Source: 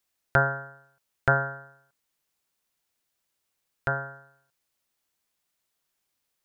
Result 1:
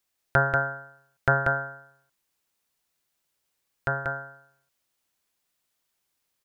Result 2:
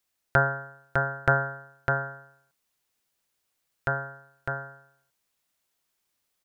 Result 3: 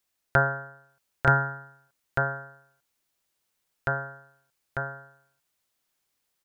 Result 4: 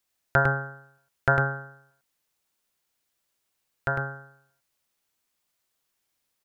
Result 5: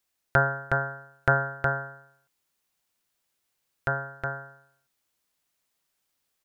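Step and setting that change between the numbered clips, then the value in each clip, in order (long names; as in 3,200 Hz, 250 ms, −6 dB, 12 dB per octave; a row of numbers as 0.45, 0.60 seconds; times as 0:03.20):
single-tap delay, delay time: 187, 604, 896, 103, 365 milliseconds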